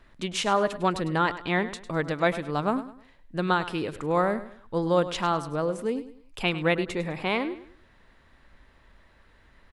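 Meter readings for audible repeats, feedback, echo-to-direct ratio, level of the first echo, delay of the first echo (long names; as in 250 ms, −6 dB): 3, 33%, −13.5 dB, −14.0 dB, 102 ms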